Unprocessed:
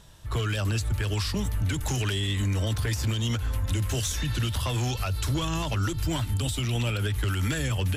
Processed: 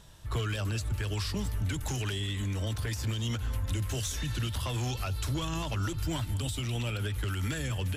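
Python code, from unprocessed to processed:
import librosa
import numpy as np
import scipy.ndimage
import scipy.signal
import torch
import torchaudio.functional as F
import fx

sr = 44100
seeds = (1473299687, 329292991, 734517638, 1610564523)

p1 = fx.rider(x, sr, range_db=4, speed_s=0.5)
p2 = p1 + fx.echo_single(p1, sr, ms=198, db=-18.0, dry=0)
y = F.gain(torch.from_numpy(p2), -5.0).numpy()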